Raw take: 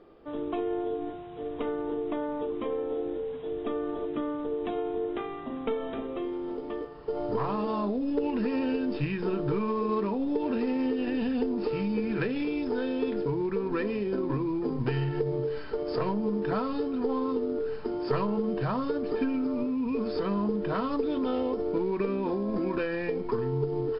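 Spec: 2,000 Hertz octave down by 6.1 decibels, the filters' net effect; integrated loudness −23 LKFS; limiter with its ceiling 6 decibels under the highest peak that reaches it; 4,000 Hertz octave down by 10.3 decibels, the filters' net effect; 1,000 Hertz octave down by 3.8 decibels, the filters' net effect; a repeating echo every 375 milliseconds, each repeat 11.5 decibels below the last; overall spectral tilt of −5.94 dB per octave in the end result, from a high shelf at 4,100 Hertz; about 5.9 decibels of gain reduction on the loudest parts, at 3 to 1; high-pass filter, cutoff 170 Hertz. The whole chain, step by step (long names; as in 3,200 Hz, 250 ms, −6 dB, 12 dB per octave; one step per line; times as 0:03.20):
high-pass filter 170 Hz
parametric band 1,000 Hz −3 dB
parametric band 2,000 Hz −3 dB
parametric band 4,000 Hz −8 dB
high-shelf EQ 4,100 Hz −8.5 dB
downward compressor 3 to 1, threshold −33 dBFS
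brickwall limiter −28.5 dBFS
repeating echo 375 ms, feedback 27%, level −11.5 dB
level +13.5 dB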